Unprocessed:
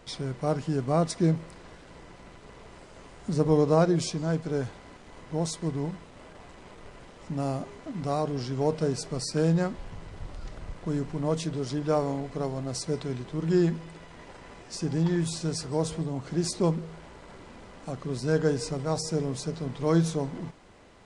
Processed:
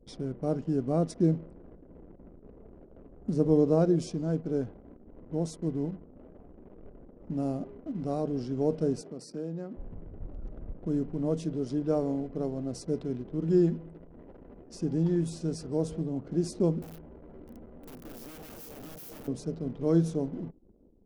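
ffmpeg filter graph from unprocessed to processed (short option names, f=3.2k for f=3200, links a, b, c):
-filter_complex "[0:a]asettb=1/sr,asplit=3[a][b][c];[a]atrim=end=9.014[d];[b]atrim=start=9.01:end=9.77,asetpts=PTS-STARTPTS,afade=t=in:d=0.004:c=qsin,afade=t=out:st=0.756:d=0.004:c=qsin,highpass=180,acompressor=threshold=-38dB:ratio=2:attack=3.2:release=140:knee=1:detection=peak[e];[c]atrim=start=9.766[f];[d][e]acrossfade=d=0.004:c1=hsin:c2=qsin[g];[g][f]acrossfade=d=0.004:c1=qsin:c2=hsin,asettb=1/sr,asplit=3[h][i][j];[h]atrim=end=16.824[k];[i]atrim=start=16.82:end=19.28,asetpts=PTS-STARTPTS,afade=t=in:d=0.004:c=qsin,afade=t=out:st=2.456:d=0.004:c=qsin,asplit=2[l][m];[m]adelay=13,volume=-6.5dB[n];[l][n]amix=inputs=2:normalize=0,atrim=end_sample=108486,acompressor=threshold=-37dB:ratio=2.5:attack=3.2:release=140:knee=1:detection=peak,aeval=exprs='(mod(63.1*val(0)+1,2)-1)/63.1':c=same[o];[j]atrim=start=19.276[p];[k][o]acrossfade=d=0.004:c1=hsin:c2=qsin[q];[q][p]acrossfade=d=0.004:c1=qsin:c2=hsin,equalizer=f=125:t=o:w=1:g=-6,equalizer=f=250:t=o:w=1:g=4,equalizer=f=1k:t=o:w=1:g=-10,equalizer=f=2k:t=o:w=1:g=-10,equalizer=f=4k:t=o:w=1:g=-9,equalizer=f=8k:t=o:w=1:g=-9,anlmdn=0.00251"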